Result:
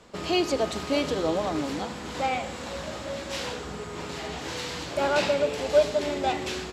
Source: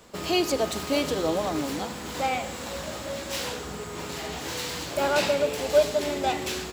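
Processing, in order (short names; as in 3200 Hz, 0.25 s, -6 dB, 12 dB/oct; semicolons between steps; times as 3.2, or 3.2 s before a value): air absorption 57 m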